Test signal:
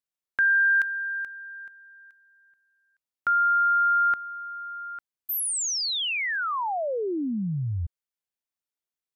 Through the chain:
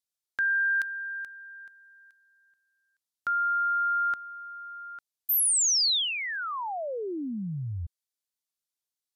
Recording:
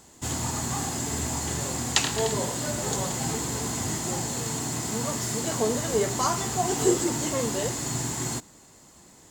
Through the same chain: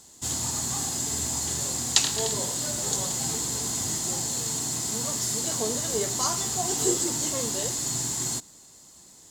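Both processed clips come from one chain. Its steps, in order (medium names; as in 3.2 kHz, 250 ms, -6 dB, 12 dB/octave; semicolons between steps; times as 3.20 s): high-order bell 6.9 kHz +9 dB 2.3 oct; trim -5 dB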